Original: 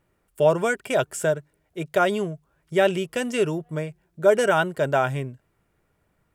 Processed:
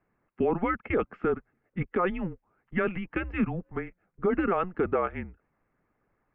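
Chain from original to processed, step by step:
harmonic and percussive parts rebalanced harmonic −9 dB
single-sideband voice off tune −180 Hz 190–2,500 Hz
brickwall limiter −18.5 dBFS, peak gain reduction 10 dB
level +1.5 dB

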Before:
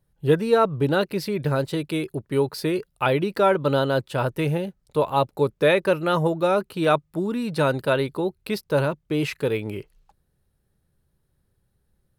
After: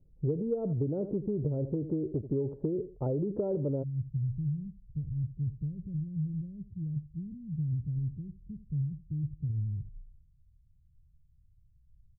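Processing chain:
low-shelf EQ 72 Hz +9.5 dB
repeating echo 80 ms, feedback 16%, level −20 dB
transient designer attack +2 dB, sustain +7 dB
inverse Chebyshev low-pass filter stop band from 3,000 Hz, stop band 80 dB, from 0:03.82 stop band from 810 Hz
downward compressor 8 to 1, threshold −28 dBFS, peak gain reduction 16 dB

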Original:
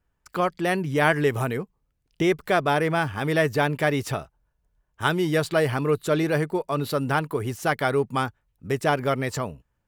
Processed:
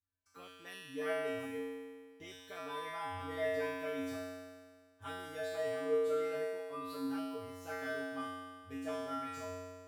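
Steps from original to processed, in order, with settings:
tuned comb filter 91 Hz, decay 1.7 s, harmonics odd, mix 100%
level +3.5 dB

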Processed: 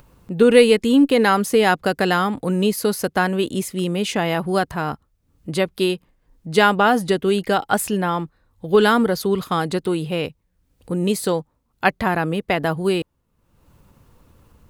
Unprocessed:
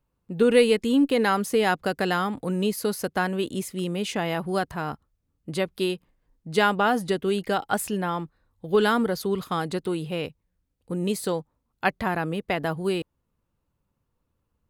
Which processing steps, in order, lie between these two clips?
upward compression, threshold −42 dBFS
level +6 dB

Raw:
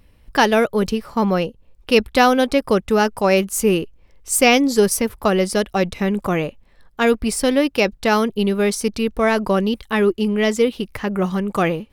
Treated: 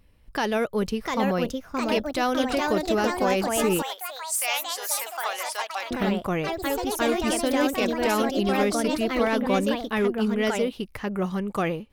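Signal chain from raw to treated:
brickwall limiter −9.5 dBFS, peak gain reduction 7.5 dB
delay with pitch and tempo change per echo 760 ms, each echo +3 semitones, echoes 3
0:03.82–0:05.91: high-pass filter 770 Hz 24 dB per octave
level −6.5 dB

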